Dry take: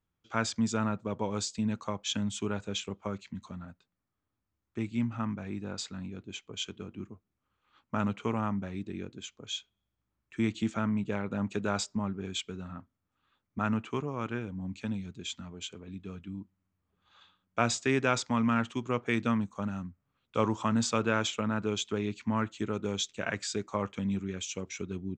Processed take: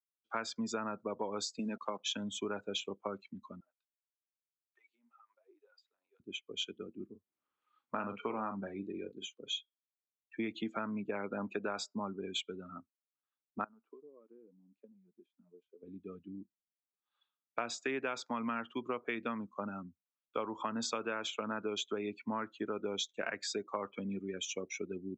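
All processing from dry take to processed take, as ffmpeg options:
-filter_complex "[0:a]asettb=1/sr,asplit=3[a][b][c];[a]atrim=end=1.594[d];[b]atrim=start=1.59:end=2,asetpts=PTS-STARTPTS,afade=t=in:d=0.004:c=qsin,afade=t=out:st=0.406:d=0.004:c=qsin,highpass=f=150:w=0.5412,highpass=f=150:w=1.3066,aeval=exprs='val(0)+0.000631*(sin(2*PI*60*n/s)+sin(2*PI*2*60*n/s)/2+sin(2*PI*3*60*n/s)/3+sin(2*PI*4*60*n/s)/4+sin(2*PI*5*60*n/s)/5)':c=same,acrusher=bits=7:mix=0:aa=0.5[e];[c]atrim=start=1.996[f];[d][e]acrossfade=d=0.004:c1=hsin:c2=qsin[g];[g][f]acrossfade=d=0.004:c1=qsin:c2=hsin,asettb=1/sr,asplit=3[h][i][j];[h]atrim=end=3.604[k];[i]atrim=start=3.6:end=6.2,asetpts=PTS-STARTPTS,afade=t=in:d=0.004:c=qsin,afade=t=out:st=2.596:d=0.004:c=qsin,highpass=f=490:w=0.5412,highpass=f=490:w=1.3066,acompressor=threshold=-49dB:ratio=16:attack=3.2:release=140:knee=1:detection=peak,acrossover=split=640[l][m];[l]aeval=exprs='val(0)*(1-0.7/2+0.7/2*cos(2*PI*2.1*n/s))':c=same[n];[m]aeval=exprs='val(0)*(1-0.7/2-0.7/2*cos(2*PI*2.1*n/s))':c=same[o];[n][o]amix=inputs=2:normalize=0[p];[j]atrim=start=6.196[q];[k][p]acrossfade=d=0.004:c1=hsin:c2=qsin[r];[r][q]acrossfade=d=0.004:c1=qsin:c2=hsin,asettb=1/sr,asplit=3[s][t][u];[s]atrim=end=7.094[v];[t]atrim=start=7.09:end=9.5,asetpts=PTS-STARTPTS,afade=t=in:d=0.004:c=qsin,afade=t=out:st=2.406:d=0.004:c=qsin,highpass=50,acompressor=mode=upward:threshold=-49dB:ratio=2.5:attack=3.2:release=140:knee=2.83:detection=peak,asplit=2[w][x];[x]adelay=41,volume=-8dB[y];[w][y]amix=inputs=2:normalize=0,atrim=end_sample=106281[z];[u]atrim=start=9.496[aa];[v][z]acrossfade=d=0.004:c1=hsin:c2=qsin[ab];[ab][aa]acrossfade=d=0.004:c1=qsin:c2=hsin,asettb=1/sr,asplit=3[ac][ad][ae];[ac]atrim=end=13.644[af];[ad]atrim=start=13.64:end=15.83,asetpts=PTS-STARTPTS,afade=t=in:d=0.004:c=qsin,afade=t=out:st=2.186:d=0.004:c=qsin,agate=range=-6dB:threshold=-47dB:ratio=16:release=100:detection=peak,acompressor=threshold=-44dB:ratio=10:attack=3.2:release=140:knee=1:detection=peak,bandpass=f=520:t=q:w=0.89[ag];[ae]atrim=start=15.826[ah];[af][ag]acrossfade=d=0.004:c1=hsin:c2=qsin[ai];[ai][ah]acrossfade=d=0.004:c1=qsin:c2=hsin,afftdn=nr=26:nf=-43,acrossover=split=250 6600:gain=0.0891 1 0.224[aj][ak][al];[aj][ak][al]amix=inputs=3:normalize=0,acompressor=threshold=-34dB:ratio=10,volume=1.5dB"

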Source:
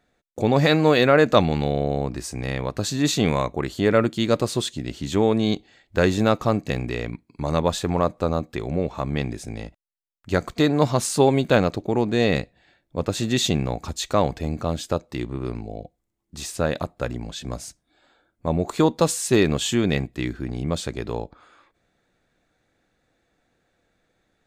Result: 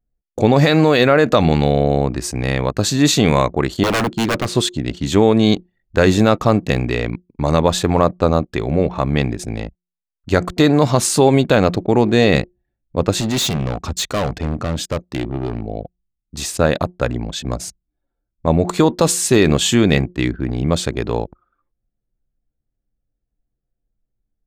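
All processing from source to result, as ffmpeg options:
-filter_complex "[0:a]asettb=1/sr,asplit=3[a][b][c];[a]atrim=end=3.834[d];[b]atrim=start=3.83:end=4.55,asetpts=PTS-STARTPTS,afade=t=in:d=0.004:c=qsin,afade=t=out:st=0.716:d=0.004:c=qsin,highshelf=f=5.4k:g=-9,acrusher=bits=8:mode=log:mix=0:aa=0.000001,aeval=exprs='0.1*(abs(mod(val(0)/0.1+3,4)-2)-1)':c=same[e];[c]atrim=start=4.546[f];[d][e]acrossfade=d=0.004:c1=hsin:c2=qsin[g];[g][f]acrossfade=d=0.004:c1=qsin:c2=hsin,asettb=1/sr,asplit=3[h][i][j];[h]atrim=end=13.204[k];[i]atrim=start=13.2:end=15.66,asetpts=PTS-STARTPTS,afade=t=in:d=0.004:c=qsin,afade=t=out:st=2.456:d=0.004:c=qsin,highpass=40,equalizer=f=900:w=4.8:g=-4,asoftclip=type=hard:threshold=-24dB[l];[j]atrim=start=15.656[m];[k][l]acrossfade=d=0.004:c1=hsin:c2=qsin[n];[n][m]acrossfade=d=0.004:c1=qsin:c2=hsin,bandreject=f=178.6:t=h:w=4,bandreject=f=357.2:t=h:w=4,anlmdn=0.398,alimiter=level_in=9dB:limit=-1dB:release=50:level=0:latency=1,volume=-1dB"

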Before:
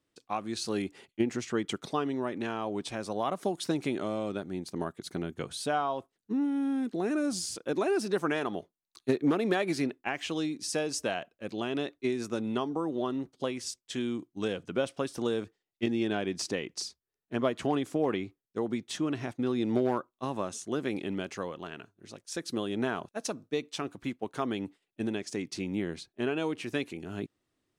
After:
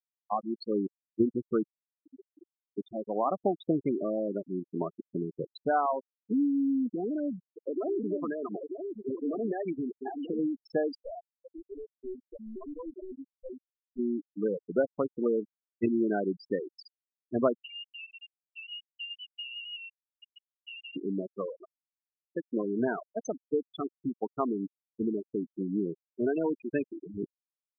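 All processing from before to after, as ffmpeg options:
-filter_complex "[0:a]asettb=1/sr,asplit=3[a][b][c];[a]atrim=end=1.634[d];[b]atrim=start=1.63:end=2.78,asetpts=PTS-STARTPTS,afade=t=in:d=0.004:c=qsin,afade=t=out:st=1.146:d=0.004:c=qsin,lowpass=2.9k,equalizer=f=170:t=o:w=0.72:g=-14.5,acompressor=threshold=-41dB:ratio=16:attack=3.2:release=140:knee=1:detection=peak[e];[c]atrim=start=2.776[f];[d][e]acrossfade=d=0.004:c1=hsin:c2=qsin[g];[g][f]acrossfade=d=0.004:c1=qsin:c2=hsin,asettb=1/sr,asplit=3[h][i][j];[h]atrim=end=6.894[k];[i]atrim=start=6.89:end=10.39,asetpts=PTS-STARTPTS,afade=t=in:d=0.004:c=qsin,afade=t=out:st=3.496:d=0.004:c=qsin,lowpass=4.7k,acompressor=threshold=-30dB:ratio=6:attack=3.2:release=140:knee=1:detection=peak,aecho=1:1:939:0.531,atrim=end_sample=154350[l];[j]atrim=start=10.386[m];[k][l]acrossfade=d=0.004:c1=hsin:c2=qsin[n];[n][m]acrossfade=d=0.004:c1=qsin:c2=hsin,asettb=1/sr,asplit=3[o][p][q];[o]atrim=end=10.954[r];[p]atrim=start=10.95:end=13.99,asetpts=PTS-STARTPTS,afade=t=in:d=0.004:c=qsin,afade=t=out:st=3.036:d=0.004:c=qsin,flanger=delay=15.5:depth=3.6:speed=1,aeval=exprs='(tanh(63.1*val(0)+0.6)-tanh(0.6))/63.1':c=same,equalizer=f=150:w=1:g=-4[s];[q]atrim=start=13.986[t];[r][s]acrossfade=d=0.004:c1=hsin:c2=qsin[u];[u][t]acrossfade=d=0.004:c1=qsin:c2=hsin,asettb=1/sr,asplit=3[v][w][x];[v]atrim=end=17.544[y];[w]atrim=start=17.54:end=20.96,asetpts=PTS-STARTPTS,afade=t=in:d=0.004:c=qsin,afade=t=out:st=3.416:d=0.004:c=qsin,acompressor=threshold=-42dB:ratio=20:attack=3.2:release=140:knee=1:detection=peak,lowpass=f=2.6k:t=q:w=0.5098,lowpass=f=2.6k:t=q:w=0.6013,lowpass=f=2.6k:t=q:w=0.9,lowpass=f=2.6k:t=q:w=2.563,afreqshift=-3100,aeval=exprs='0.0237*sin(PI/2*1.58*val(0)/0.0237)':c=same[z];[x]atrim=start=20.956[aa];[y][z]acrossfade=d=0.004:c1=hsin:c2=qsin[ab];[ab][aa]acrossfade=d=0.004:c1=qsin:c2=hsin,equalizer=f=600:w=0.39:g=3.5,afftfilt=real='re*gte(hypot(re,im),0.0891)':imag='im*gte(hypot(re,im),0.0891)':win_size=1024:overlap=0.75"

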